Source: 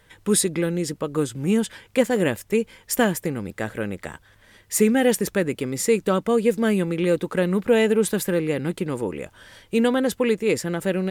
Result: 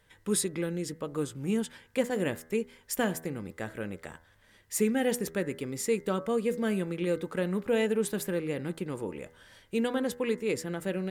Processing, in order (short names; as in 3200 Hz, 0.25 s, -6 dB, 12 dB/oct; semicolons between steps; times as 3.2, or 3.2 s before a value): de-hum 81 Hz, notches 26; gain -8.5 dB